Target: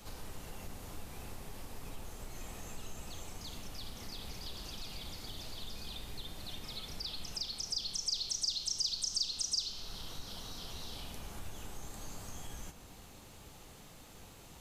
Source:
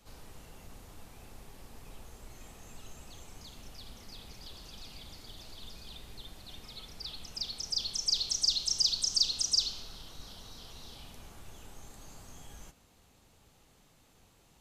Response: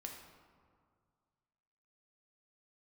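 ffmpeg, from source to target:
-filter_complex "[0:a]acompressor=threshold=-54dB:ratio=2,asplit=2[link_01][link_02];[1:a]atrim=start_sample=2205,highshelf=frequency=12000:gain=7[link_03];[link_02][link_03]afir=irnorm=-1:irlink=0,volume=3dB[link_04];[link_01][link_04]amix=inputs=2:normalize=0,volume=4dB"

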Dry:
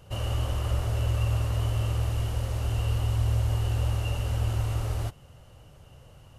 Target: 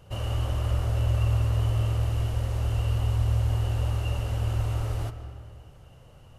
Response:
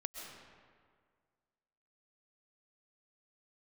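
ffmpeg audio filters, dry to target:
-filter_complex "[0:a]asplit=2[link_01][link_02];[1:a]atrim=start_sample=2205,highshelf=frequency=5100:gain=-11.5[link_03];[link_02][link_03]afir=irnorm=-1:irlink=0,volume=0.5dB[link_04];[link_01][link_04]amix=inputs=2:normalize=0,volume=-5dB"

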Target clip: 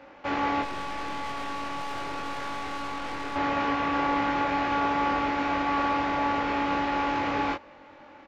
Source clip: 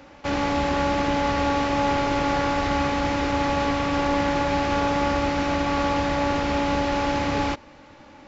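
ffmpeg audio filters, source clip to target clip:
ffmpeg -i in.wav -filter_complex "[0:a]bass=frequency=250:gain=-11,treble=frequency=4000:gain=-14,asettb=1/sr,asplit=3[link_01][link_02][link_03];[link_01]atrim=end=0.624[link_04];[link_02]atrim=start=0.62:end=3.36,asetpts=PTS-STARTPTS,afade=type=in:duration=0.004:curve=qsin,afade=type=out:start_time=2.736:duration=0.004:curve=qsin,aeval=exprs='(tanh(35.5*val(0)+0.45)-tanh(0.45))/35.5':channel_layout=same[link_05];[link_03]atrim=start=3.356[link_06];[link_04][link_05]acrossfade=duration=0.004:curve1=hsin:curve2=qsin[link_07];[link_07][link_06]acrossfade=duration=0.004:curve1=qsin:curve2=hsin,asplit=2[link_08][link_09];[link_09]adelay=22,volume=-3.5dB[link_10];[link_08][link_10]amix=inputs=2:normalize=0,volume=-2dB" out.wav

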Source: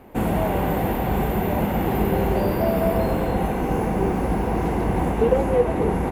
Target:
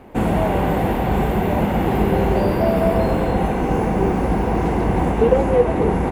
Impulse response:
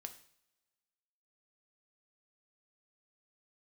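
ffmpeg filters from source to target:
-af "equalizer=frequency=13000:width_type=o:width=0.36:gain=-14.5,volume=3.5dB"

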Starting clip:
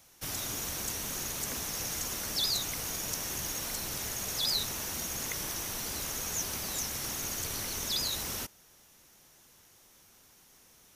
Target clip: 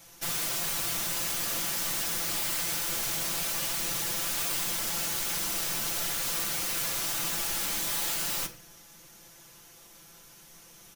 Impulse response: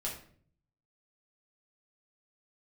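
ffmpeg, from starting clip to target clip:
-filter_complex "[0:a]aeval=exprs='(mod(42.2*val(0)+1,2)-1)/42.2':channel_layout=same,aecho=1:1:5.9:0.86,asplit=2[link_01][link_02];[1:a]atrim=start_sample=2205[link_03];[link_02][link_03]afir=irnorm=-1:irlink=0,volume=-5.5dB[link_04];[link_01][link_04]amix=inputs=2:normalize=0,volume=1.5dB"

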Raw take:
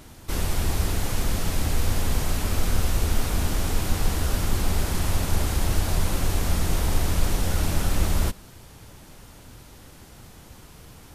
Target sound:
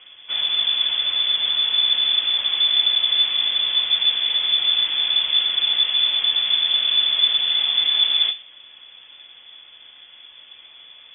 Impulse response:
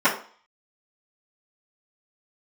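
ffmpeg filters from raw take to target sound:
-filter_complex "[0:a]asplit=2[link_01][link_02];[link_02]lowshelf=frequency=390:gain=8.5[link_03];[1:a]atrim=start_sample=2205[link_04];[link_03][link_04]afir=irnorm=-1:irlink=0,volume=-25.5dB[link_05];[link_01][link_05]amix=inputs=2:normalize=0,lowpass=frequency=3000:width_type=q:width=0.5098,lowpass=frequency=3000:width_type=q:width=0.6013,lowpass=frequency=3000:width_type=q:width=0.9,lowpass=frequency=3000:width_type=q:width=2.563,afreqshift=-3500"

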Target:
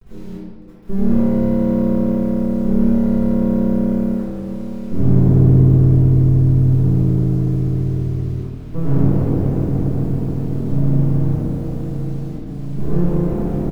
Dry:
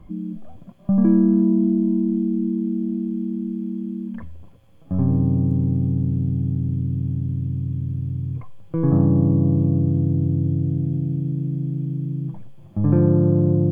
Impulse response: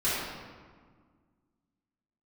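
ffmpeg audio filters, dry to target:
-filter_complex "[0:a]asettb=1/sr,asplit=3[link_01][link_02][link_03];[link_01]atrim=end=10.714[link_04];[link_02]atrim=start=10.71:end=11.34,asetpts=PTS-STARTPTS,afade=type=in:duration=0.004:curve=qsin,afade=type=out:start_time=0.626:duration=0.004:curve=qsin,equalizer=frequency=125:width_type=o:width=1:gain=11,equalizer=frequency=250:width_type=o:width=1:gain=-8,equalizer=frequency=500:width_type=o:width=1:gain=11,equalizer=frequency=1000:width_type=o:width=1:gain=10[link_05];[link_03]atrim=start=11.336[link_06];[link_04][link_05]acrossfade=duration=0.004:curve1=hsin:curve2=qsin[link_07];[link_07][link_06]acrossfade=duration=0.004:curve1=qsin:curve2=hsin,asplit=2[link_08][link_09];[link_09]adelay=1749,volume=-8dB,highshelf=frequency=4000:gain=-39.4[link_10];[link_08][link_10]amix=inputs=2:normalize=0,dynaudnorm=framelen=960:gausssize=3:maxgain=7dB,asettb=1/sr,asplit=3[link_11][link_12][link_13];[link_11]atrim=end=12.284[link_14];[link_12]atrim=start=12.28:end=13.27,asetpts=PTS-STARTPTS,afade=type=in:duration=0.004:curve=qsin,afade=type=out:start_time=0.986:duration=0.004:curve=qsin,aecho=1:1:4.8:0.76,atrim=end_sample=43659[link_15];[link_13]atrim=start=13.266[link_16];[link_14][link_15]acrossfade=duration=0.004:curve1=hsin:curve2=qsin[link_17];[link_17][link_16]acrossfade=duration=0.004:curve1=qsin:curve2=hsin,aeval=exprs='max(val(0),0)':channel_layout=same,acrusher=bits=6:mix=0:aa=0.000001,tiltshelf=frequency=630:gain=3[link_18];[1:a]atrim=start_sample=2205[link_19];[link_18][link_19]afir=irnorm=-1:irlink=0,volume=-12dB"

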